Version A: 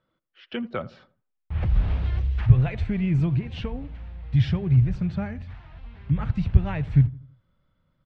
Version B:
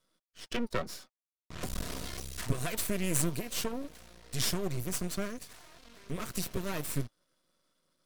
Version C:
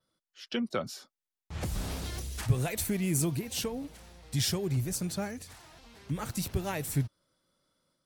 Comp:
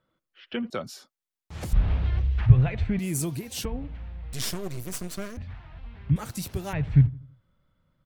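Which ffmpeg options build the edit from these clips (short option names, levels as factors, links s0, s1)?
-filter_complex "[2:a]asplit=3[s0][s1][s2];[0:a]asplit=5[s3][s4][s5][s6][s7];[s3]atrim=end=0.702[s8];[s0]atrim=start=0.698:end=1.732[s9];[s4]atrim=start=1.728:end=2.992[s10];[s1]atrim=start=2.988:end=3.652[s11];[s5]atrim=start=3.648:end=4.332[s12];[1:a]atrim=start=4.328:end=5.372[s13];[s6]atrim=start=5.368:end=6.162[s14];[s2]atrim=start=6.158:end=6.732[s15];[s7]atrim=start=6.728[s16];[s8][s9]acrossfade=d=0.004:c1=hsin:c2=hsin[s17];[s17][s10]acrossfade=d=0.004:c1=hsin:c2=hsin[s18];[s18][s11]acrossfade=d=0.004:c1=hsin:c2=hsin[s19];[s19][s12]acrossfade=d=0.004:c1=hsin:c2=hsin[s20];[s20][s13]acrossfade=d=0.004:c1=hsin:c2=hsin[s21];[s21][s14]acrossfade=d=0.004:c1=hsin:c2=hsin[s22];[s22][s15]acrossfade=d=0.004:c1=hsin:c2=hsin[s23];[s23][s16]acrossfade=d=0.004:c1=hsin:c2=hsin"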